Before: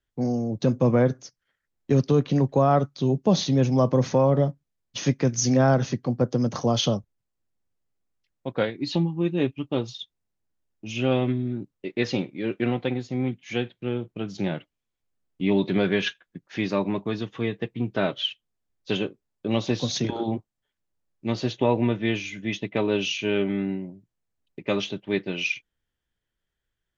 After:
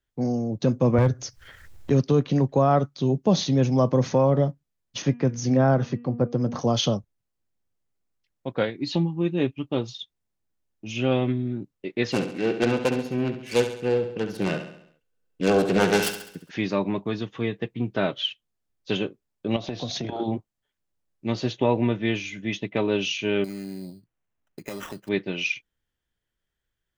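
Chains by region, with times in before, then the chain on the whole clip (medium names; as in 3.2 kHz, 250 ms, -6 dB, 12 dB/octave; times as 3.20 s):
0.98–1.91 s: resonant low shelf 130 Hz +10 dB, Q 1.5 + upward compressor, threshold -23 dBFS + hard clipper -13 dBFS
5.02–6.59 s: low-pass 1.9 kHz 6 dB/octave + de-hum 239.8 Hz, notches 13
12.12–16.51 s: self-modulated delay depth 0.69 ms + small resonant body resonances 480/1500/2700 Hz, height 12 dB, ringing for 35 ms + feedback delay 68 ms, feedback 51%, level -9.5 dB
19.56–20.20 s: low-pass 5 kHz + peaking EQ 680 Hz +13 dB 0.21 oct + compression, threshold -26 dBFS
23.44–25.09 s: compression, threshold -31 dBFS + sample-rate reducer 4.5 kHz
whole clip: none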